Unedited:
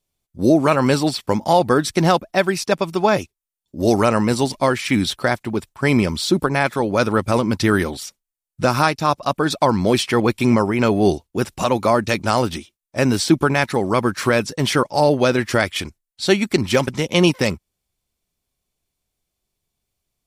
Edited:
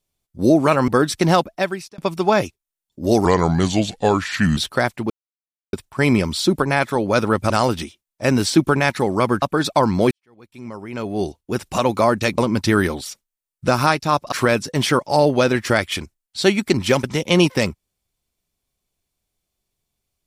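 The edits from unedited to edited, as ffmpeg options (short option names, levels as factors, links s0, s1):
-filter_complex "[0:a]asplit=11[s0][s1][s2][s3][s4][s5][s6][s7][s8][s9][s10];[s0]atrim=end=0.882[s11];[s1]atrim=start=1.638:end=2.74,asetpts=PTS-STARTPTS,afade=t=out:st=0.562:d=0.54[s12];[s2]atrim=start=2.74:end=4.014,asetpts=PTS-STARTPTS,afade=t=in:d=0.004:c=hsin[s13];[s3]atrim=start=4.01:end=5.04,asetpts=PTS-STARTPTS,asetrate=34398,aresample=44100[s14];[s4]atrim=start=5.036:end=5.57,asetpts=PTS-STARTPTS,afade=t=out:st=0.53:d=0.004:c=hsin,apad=pad_dur=0.63[s15];[s5]atrim=start=5.57:end=7.342,asetpts=PTS-STARTPTS,afade=t=in:d=0.004:c=hsin[s16];[s6]atrim=start=12.238:end=14.162[s17];[s7]atrim=start=9.278:end=9.97,asetpts=PTS-STARTPTS,afade=t=out:st=0.688:d=0.004:c=hsin[s18];[s8]atrim=start=9.97:end=12.242,asetpts=PTS-STARTPTS,afade=t=in:d=1.63:c=qua[s19];[s9]atrim=start=7.338:end=9.282[s20];[s10]atrim=start=14.158[s21];[s12][s13]concat=n=2:v=0:a=1[s22];[s11][s22]acrossfade=d=0.004:c1=hsin:c2=hsin[s23];[s23][s14]acrossfade=d=0.004:c1=hsin:c2=hsin[s24];[s15][s16]concat=n=2:v=0:a=1[s25];[s24][s25]acrossfade=d=0.004:c1=hsin:c2=hsin[s26];[s26][s17]acrossfade=d=0.004:c1=hsin:c2=hsin[s27];[s18][s19]concat=n=2:v=0:a=1[s28];[s27][s28]acrossfade=d=0.004:c1=hsin:c2=hsin[s29];[s29][s20]acrossfade=d=0.004:c1=hsin:c2=hsin[s30];[s30][s21]acrossfade=d=0.004:c1=hsin:c2=hsin"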